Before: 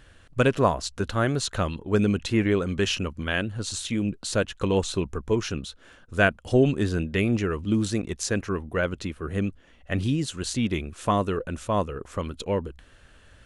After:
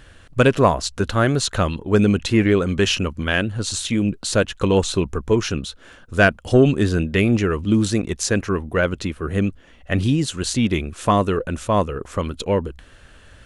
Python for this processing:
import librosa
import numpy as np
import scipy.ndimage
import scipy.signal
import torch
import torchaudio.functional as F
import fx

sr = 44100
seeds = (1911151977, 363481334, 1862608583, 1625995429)

y = 10.0 ** (-7.5 / 20.0) * np.tanh(x / 10.0 ** (-7.5 / 20.0))
y = y * librosa.db_to_amplitude(6.5)